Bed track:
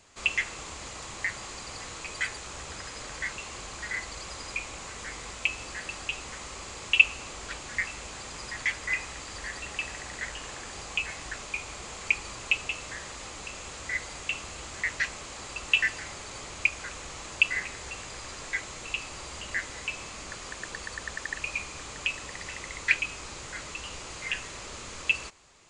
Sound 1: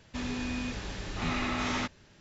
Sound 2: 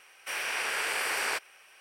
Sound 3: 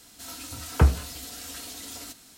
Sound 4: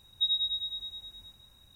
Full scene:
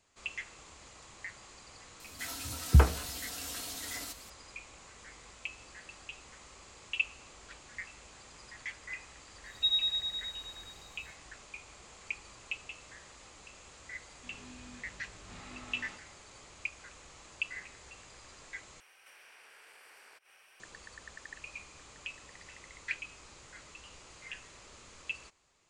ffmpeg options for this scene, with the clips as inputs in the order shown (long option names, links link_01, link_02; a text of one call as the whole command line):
ffmpeg -i bed.wav -i cue0.wav -i cue1.wav -i cue2.wav -i cue3.wav -filter_complex "[0:a]volume=-13dB[link_01];[3:a]acrossover=split=270[link_02][link_03];[link_03]adelay=70[link_04];[link_02][link_04]amix=inputs=2:normalize=0[link_05];[1:a]flanger=delay=19:depth=3:speed=1.9[link_06];[2:a]acompressor=threshold=-51dB:ratio=6:attack=3.2:release=140:knee=1:detection=peak[link_07];[link_01]asplit=2[link_08][link_09];[link_08]atrim=end=18.804[link_10];[link_07]atrim=end=1.8,asetpts=PTS-STARTPTS,volume=-5dB[link_11];[link_09]atrim=start=20.596[link_12];[link_05]atrim=end=2.37,asetpts=PTS-STARTPTS,volume=-1.5dB,afade=type=in:duration=0.004:curve=hsin,afade=type=out:start_time=2.366:duration=0.004:curve=hsin,adelay=1930[link_13];[4:a]atrim=end=1.75,asetpts=PTS-STARTPTS,volume=-0.5dB,afade=type=in:duration=0.1,afade=type=out:start_time=1.65:duration=0.1,adelay=9420[link_14];[link_06]atrim=end=2.2,asetpts=PTS-STARTPTS,volume=-15dB,afade=type=in:duration=0.004:curve=hsin,afade=type=out:start_time=2.196:duration=0.004:curve=hsin,adelay=14090[link_15];[link_10][link_11]acrossfade=duration=0.004:curve1=hsin:curve2=hsin[link_16];[link_16][link_12]acrossfade=duration=0.004:curve1=hsin:curve2=hsin[link_17];[link_17][link_13][link_14][link_15]amix=inputs=4:normalize=0" out.wav